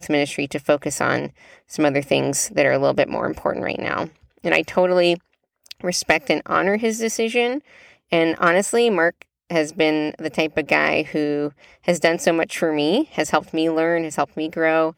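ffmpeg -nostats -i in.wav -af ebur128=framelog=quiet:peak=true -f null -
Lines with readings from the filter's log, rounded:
Integrated loudness:
  I:         -20.4 LUFS
  Threshold: -30.7 LUFS
Loudness range:
  LRA:         1.7 LU
  Threshold: -40.6 LUFS
  LRA low:   -21.4 LUFS
  LRA high:  -19.7 LUFS
True peak:
  Peak:       -1.8 dBFS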